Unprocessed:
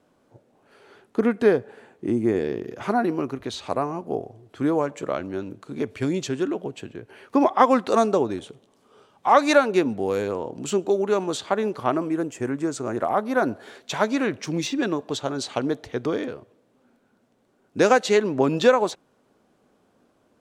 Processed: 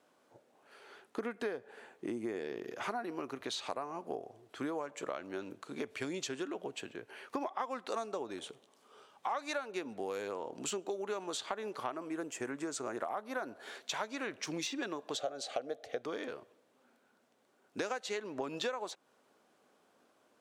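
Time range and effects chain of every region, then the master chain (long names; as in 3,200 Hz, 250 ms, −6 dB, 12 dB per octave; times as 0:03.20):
0:15.15–0:16.02: Butterworth band-reject 920 Hz, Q 3 + flat-topped bell 650 Hz +12.5 dB 1.1 octaves
whole clip: high-pass filter 740 Hz 6 dB per octave; downward compressor 6 to 1, threshold −34 dBFS; level −1 dB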